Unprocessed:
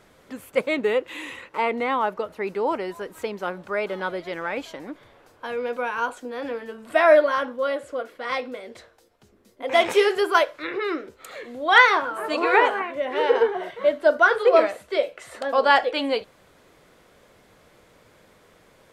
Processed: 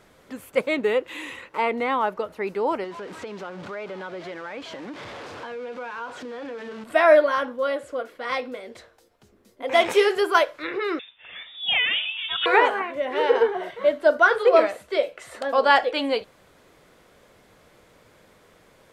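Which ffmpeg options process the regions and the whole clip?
-filter_complex "[0:a]asettb=1/sr,asplit=3[a][b][c];[a]atrim=end=2.844[d];[b]atrim=start=2.84:end=6.84,asetpts=PTS-STARTPTS,afade=t=in:d=0.004:c=qsin,afade=t=out:st=3.996:d=0.004:c=qsin,aeval=exprs='val(0)+0.5*0.0237*sgn(val(0))':c=same,acompressor=threshold=-35dB:ratio=2.5:attack=3.2:release=140:knee=1:detection=peak,highpass=100,lowpass=4.4k[e];[c]atrim=start=6.836[f];[d][e]acrossfade=d=0.004:c1=hsin:c2=qsin[g];[g][f]acrossfade=d=0.004:c1=qsin:c2=hsin,asettb=1/sr,asplit=3[h][i][j];[h]atrim=end=10.994[k];[i]atrim=start=10.99:end=12.46,asetpts=PTS-STARTPTS,afade=t=in:d=0.004:c=qsin,afade=t=out:st=1.466:d=0.004:c=qsin,highpass=530,acompressor=threshold=-18dB:ratio=6:attack=3.2:release=140:knee=1:detection=peak,lowpass=f=3.4k:t=q:w=0.5098,lowpass=f=3.4k:t=q:w=0.6013,lowpass=f=3.4k:t=q:w=0.9,lowpass=f=3.4k:t=q:w=2.563,afreqshift=-4000[l];[j]atrim=start=12.456[m];[k][l]acrossfade=d=0.004:c1=hsin:c2=qsin[n];[n][m]acrossfade=d=0.004:c1=qsin:c2=hsin"

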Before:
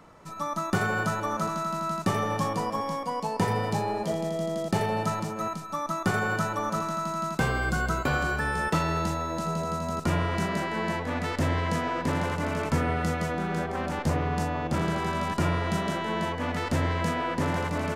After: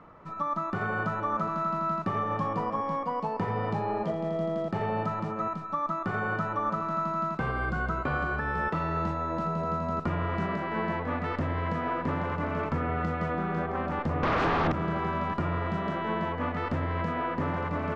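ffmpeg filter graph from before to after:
-filter_complex "[0:a]asettb=1/sr,asplit=3[a][b][c];[a]atrim=end=14.234[d];[b]atrim=start=14.23:end=14.72,asetpts=PTS-STARTPTS,afade=t=in:d=0.004:c=qsin,afade=t=out:st=0.486:d=0.004:c=qsin,aeval=exprs='0.178*sin(PI/2*7.08*val(0)/0.178)':c=same,acrossover=split=7600[e][f];[f]acompressor=threshold=-39dB:ratio=4:attack=1:release=60[g];[e][g]amix=inputs=2:normalize=0[h];[c]atrim=start=14.716[i];[d][h]acrossfade=d=0.004:c1=hsin:c2=qsin[j];[j][i]acrossfade=d=0.004:c1=qsin:c2=hsin,lowpass=2.2k,equalizer=f=1.2k:w=7.7:g=7,alimiter=limit=-20dB:level=0:latency=1:release=216"

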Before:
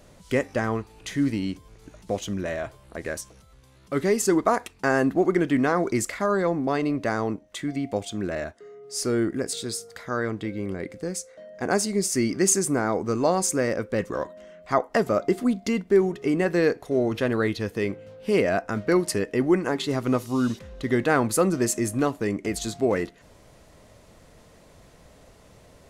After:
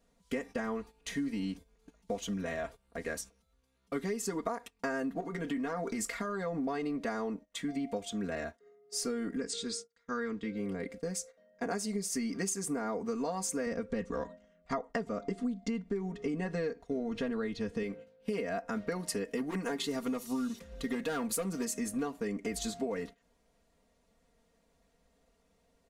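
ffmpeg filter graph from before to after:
-filter_complex "[0:a]asettb=1/sr,asplit=3[a][b][c];[a]atrim=end=5.204[d];[b]atrim=start=5.2:end=6.57,asetpts=PTS-STARTPTS,afade=t=in:d=0.004:c=qsin,afade=t=out:st=1.366:d=0.004:c=qsin,acompressor=threshold=-23dB:ratio=10:attack=3.2:release=140:knee=1:detection=peak,aeval=exprs='clip(val(0),-1,0.1)':c=same,asplit=2[e][f];[f]adelay=18,volume=-12.5dB[g];[e][g]amix=inputs=2:normalize=0,atrim=end_sample=60417[h];[c]atrim=start=6.566[i];[d][h]acrossfade=d=0.004:c1=hsin:c2=qsin[j];[j][i]acrossfade=d=0.004:c1=qsin:c2=hsin,asettb=1/sr,asplit=3[k][l][m];[k]atrim=end=9.364[n];[l]atrim=start=9.36:end=10.55,asetpts=PTS-STARTPTS,afade=t=in:d=0.004:c=qsin,afade=t=out:st=1.186:d=0.004:c=qsin,agate=range=-33dB:threshold=-35dB:ratio=3:release=100:detection=peak,lowpass=f=8k:w=0.5412,lowpass=f=8k:w=1.3066,equalizer=f=700:t=o:w=0.57:g=-10[o];[m]atrim=start=10.546[p];[n][o]acrossfade=d=0.004:c1=hsin:c2=qsin[q];[q][p]acrossfade=d=0.004:c1=qsin:c2=hsin,asettb=1/sr,asplit=3[r][s][t];[r]atrim=end=13.664[u];[s]atrim=start=13.66:end=17.83,asetpts=PTS-STARTPTS,afade=t=in:d=0.004:c=qsin,afade=t=out:st=4.166:d=0.004:c=qsin,lowpass=f=8.9k:w=0.5412,lowpass=f=8.9k:w=1.3066,lowshelf=f=200:g=9.5[v];[t]atrim=start=17.826[w];[u][v]acrossfade=d=0.004:c1=hsin:c2=qsin[x];[x][w]acrossfade=d=0.004:c1=qsin:c2=hsin,asettb=1/sr,asplit=3[y][z][aa];[y]atrim=end=19.244[ab];[z]atrim=start=19.24:end=21.65,asetpts=PTS-STARTPTS,afade=t=in:d=0.004:c=qsin,afade=t=out:st=2.406:d=0.004:c=qsin,highshelf=f=6.8k:g=9,asoftclip=type=hard:threshold=-17dB[ac];[aa]atrim=start=21.646[ad];[ab][ac]acrossfade=d=0.004:c1=hsin:c2=qsin[ae];[ae][ad]acrossfade=d=0.004:c1=qsin:c2=hsin,aecho=1:1:4.3:0.94,acompressor=threshold=-23dB:ratio=16,agate=range=-14dB:threshold=-39dB:ratio=16:detection=peak,volume=-7.5dB"

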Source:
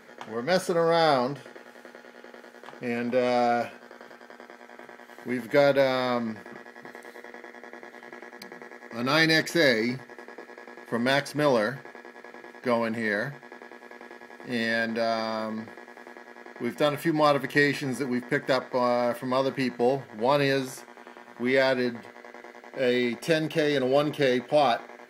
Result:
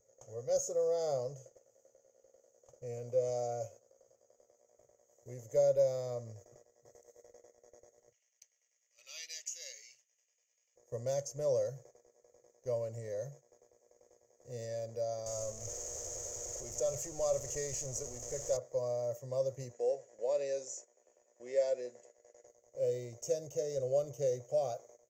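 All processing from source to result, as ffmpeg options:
-filter_complex "[0:a]asettb=1/sr,asplit=3[a][b][c];[a]atrim=end=8.124[d];[b]atrim=start=8.12:end=10.76,asetpts=PTS-STARTPTS,afade=t=in:d=0.004:c=qsin,afade=t=out:st=2.636:d=0.004:c=qsin,highpass=f=2.8k:t=q:w=9.8,highshelf=f=4.3k:g=-6.5[e];[c]atrim=start=10.756[f];[d][e]acrossfade=d=0.004:c1=hsin:c2=qsin[g];[g][f]acrossfade=d=0.004:c1=qsin:c2=hsin,asettb=1/sr,asplit=3[h][i][j];[h]atrim=end=15.264[k];[i]atrim=start=15.26:end=18.57,asetpts=PTS-STARTPTS,afade=t=in:d=0.004:c=qsin,afade=t=out:st=3.306:d=0.004:c=qsin,aeval=exprs='val(0)+0.5*0.0531*sgn(val(0))':c=same,lowpass=10k,equalizer=f=150:t=o:w=2.8:g=-6.5[l];[j]atrim=start=18.566[m];[k][l]acrossfade=d=0.004:c1=hsin:c2=qsin[n];[n][m]acrossfade=d=0.004:c1=qsin:c2=hsin,asettb=1/sr,asplit=3[o][p][q];[o]atrim=end=19.734[r];[p]atrim=start=19.73:end=22.47,asetpts=PTS-STARTPTS,afade=t=in:d=0.004:c=qsin,afade=t=out:st=2.736:d=0.004:c=qsin,highpass=f=250:w=0.5412,highpass=f=250:w=1.3066,equalizer=f=1.2k:t=q:w=4:g=-4,equalizer=f=1.7k:t=q:w=4:g=7,equalizer=f=2.6k:t=q:w=4:g=7,equalizer=f=6.6k:t=q:w=4:g=8,lowpass=f=8.1k:w=0.5412,lowpass=f=8.1k:w=1.3066,bandreject=f=6.4k:w=5.7[s];[q]atrim=start=22.466[t];[r][s]acrossfade=d=0.004:c1=hsin:c2=qsin[u];[u][t]acrossfade=d=0.004:c1=qsin:c2=hsin,bandreject=f=1.6k:w=6,agate=range=-8dB:threshold=-43dB:ratio=16:detection=peak,firequalizer=gain_entry='entry(120,0);entry(170,-26);entry(280,-28);entry(530,-4);entry(830,-25);entry(1600,-30);entry(4000,-29);entry(6600,8);entry(9600,-26);entry(14000,-8)':delay=0.05:min_phase=1"

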